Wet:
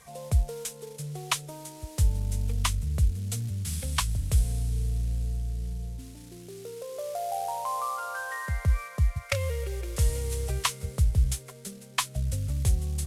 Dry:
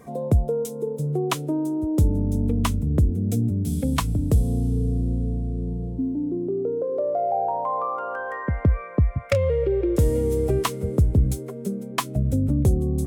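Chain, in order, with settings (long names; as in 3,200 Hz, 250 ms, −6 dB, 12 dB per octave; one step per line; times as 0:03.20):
variable-slope delta modulation 64 kbit/s
guitar amp tone stack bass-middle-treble 10-0-10
level +5 dB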